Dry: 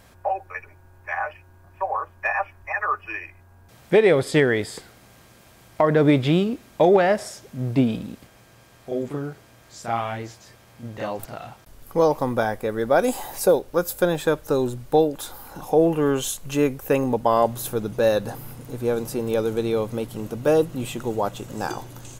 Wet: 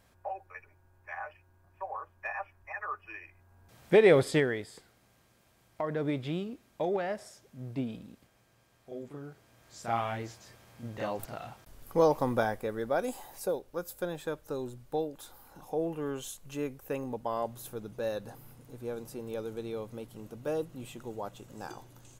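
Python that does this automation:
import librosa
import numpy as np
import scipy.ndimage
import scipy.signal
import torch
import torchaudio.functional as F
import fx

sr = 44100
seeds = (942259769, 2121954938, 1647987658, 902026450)

y = fx.gain(x, sr, db=fx.line((3.17, -13.0), (4.17, -3.0), (4.66, -15.0), (9.15, -15.0), (9.93, -5.5), (12.37, -5.5), (13.26, -14.5)))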